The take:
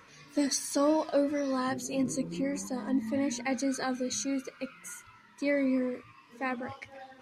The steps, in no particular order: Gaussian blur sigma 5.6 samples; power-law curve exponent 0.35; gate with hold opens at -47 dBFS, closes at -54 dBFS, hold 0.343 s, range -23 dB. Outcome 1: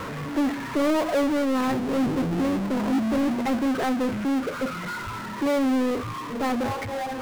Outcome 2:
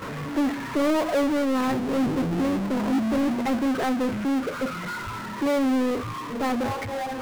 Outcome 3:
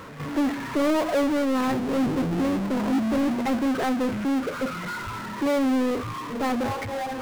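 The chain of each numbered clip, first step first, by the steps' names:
Gaussian blur > power-law curve > gate with hold; gate with hold > Gaussian blur > power-law curve; Gaussian blur > gate with hold > power-law curve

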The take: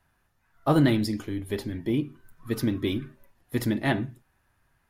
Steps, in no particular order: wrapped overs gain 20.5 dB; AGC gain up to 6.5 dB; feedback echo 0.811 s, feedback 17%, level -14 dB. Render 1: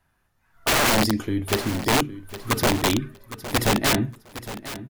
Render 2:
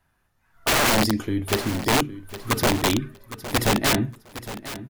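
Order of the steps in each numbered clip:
wrapped overs > AGC > feedback echo; wrapped overs > feedback echo > AGC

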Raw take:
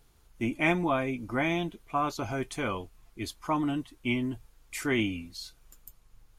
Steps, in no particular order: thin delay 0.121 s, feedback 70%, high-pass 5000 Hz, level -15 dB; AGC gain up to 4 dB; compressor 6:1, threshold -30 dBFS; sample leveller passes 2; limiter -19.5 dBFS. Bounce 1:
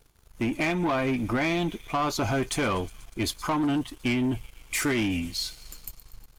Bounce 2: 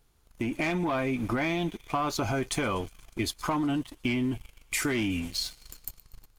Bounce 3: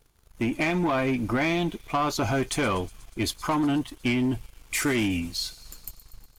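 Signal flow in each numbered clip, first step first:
thin delay > compressor > AGC > limiter > sample leveller; thin delay > sample leveller > limiter > compressor > AGC; limiter > compressor > AGC > sample leveller > thin delay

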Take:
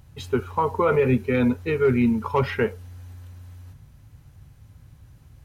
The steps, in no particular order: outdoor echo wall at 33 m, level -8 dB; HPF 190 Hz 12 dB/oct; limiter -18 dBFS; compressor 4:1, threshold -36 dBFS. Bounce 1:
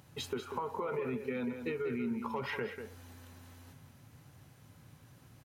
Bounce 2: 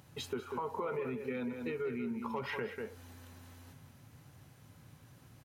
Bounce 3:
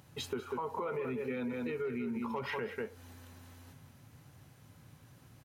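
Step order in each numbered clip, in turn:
HPF > limiter > compressor > outdoor echo; limiter > outdoor echo > compressor > HPF; outdoor echo > limiter > HPF > compressor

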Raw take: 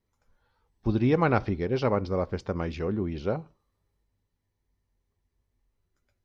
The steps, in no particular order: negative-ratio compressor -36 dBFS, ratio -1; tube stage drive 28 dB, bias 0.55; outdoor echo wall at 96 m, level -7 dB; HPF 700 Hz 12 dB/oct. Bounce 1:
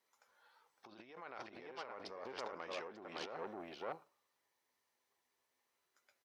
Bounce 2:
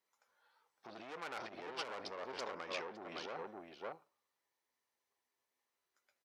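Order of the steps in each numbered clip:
outdoor echo > negative-ratio compressor > tube stage > HPF; tube stage > outdoor echo > negative-ratio compressor > HPF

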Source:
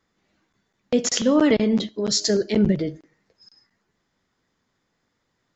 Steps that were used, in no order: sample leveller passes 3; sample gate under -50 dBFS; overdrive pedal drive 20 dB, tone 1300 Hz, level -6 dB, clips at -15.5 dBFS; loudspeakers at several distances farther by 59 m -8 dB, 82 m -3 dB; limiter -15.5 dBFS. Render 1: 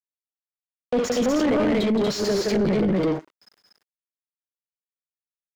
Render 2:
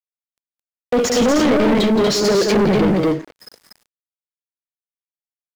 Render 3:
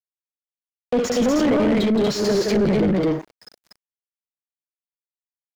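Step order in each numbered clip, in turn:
sample gate > loudspeakers at several distances > sample leveller > limiter > overdrive pedal; overdrive pedal > limiter > loudspeakers at several distances > sample leveller > sample gate; limiter > loudspeakers at several distances > sample leveller > overdrive pedal > sample gate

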